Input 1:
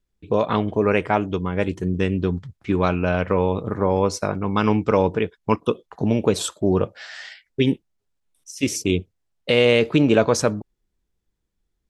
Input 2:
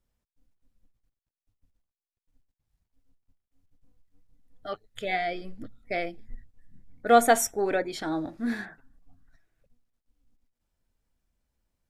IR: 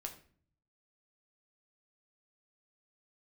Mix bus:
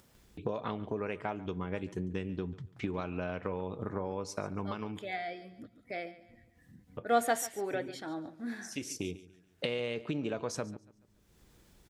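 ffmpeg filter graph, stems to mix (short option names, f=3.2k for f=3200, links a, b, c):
-filter_complex "[0:a]acompressor=threshold=-27dB:ratio=12,adelay=150,volume=-5.5dB,asplit=3[a][b][c];[a]atrim=end=4.99,asetpts=PTS-STARTPTS,afade=t=out:st=4.986:d=0.004:c=hsin[d];[b]atrim=start=4.99:end=6.97,asetpts=PTS-STARTPTS,volume=0[e];[c]atrim=start=6.97,asetpts=PTS-STARTPTS,afade=t=in:d=0.004:c=hsin[f];[d][e][f]concat=n=3:v=0:a=1,asplit=3[g][h][i];[h]volume=-11.5dB[j];[i]volume=-17.5dB[k];[1:a]highpass=85,volume=-9dB,asplit=3[l][m][n];[m]volume=-16.5dB[o];[n]apad=whole_len=531027[p];[g][p]sidechaincompress=threshold=-42dB:ratio=8:attack=35:release=1150[q];[2:a]atrim=start_sample=2205[r];[j][r]afir=irnorm=-1:irlink=0[s];[k][o]amix=inputs=2:normalize=0,aecho=0:1:142|284|426|568:1|0.23|0.0529|0.0122[t];[q][l][s][t]amix=inputs=4:normalize=0,highpass=f=66:p=1,acompressor=mode=upward:threshold=-42dB:ratio=2.5"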